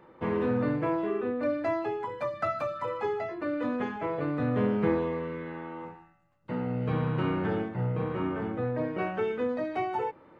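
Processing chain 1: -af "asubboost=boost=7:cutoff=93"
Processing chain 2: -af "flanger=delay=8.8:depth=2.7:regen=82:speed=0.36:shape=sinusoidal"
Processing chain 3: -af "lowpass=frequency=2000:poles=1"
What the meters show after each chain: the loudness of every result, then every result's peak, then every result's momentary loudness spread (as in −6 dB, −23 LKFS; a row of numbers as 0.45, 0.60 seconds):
−30.5, −35.0, −31.0 LKFS; −15.5, −18.0, −14.0 dBFS; 8, 7, 7 LU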